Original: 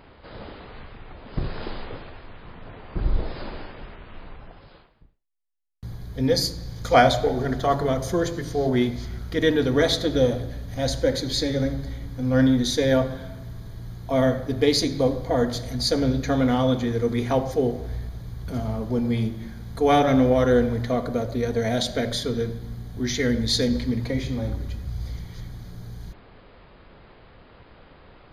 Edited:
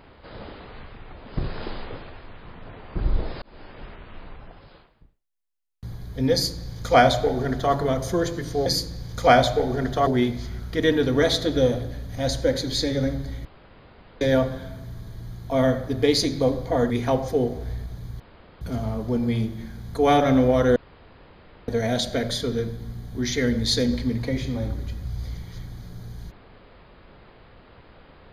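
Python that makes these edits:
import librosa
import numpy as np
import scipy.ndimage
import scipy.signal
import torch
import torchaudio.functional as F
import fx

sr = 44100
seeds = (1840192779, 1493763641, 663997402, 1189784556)

y = fx.edit(x, sr, fx.fade_in_span(start_s=3.42, length_s=0.43),
    fx.duplicate(start_s=6.33, length_s=1.41, to_s=8.66),
    fx.room_tone_fill(start_s=12.04, length_s=0.76),
    fx.cut(start_s=15.49, length_s=1.64),
    fx.insert_room_tone(at_s=18.43, length_s=0.41),
    fx.room_tone_fill(start_s=20.58, length_s=0.92), tone=tone)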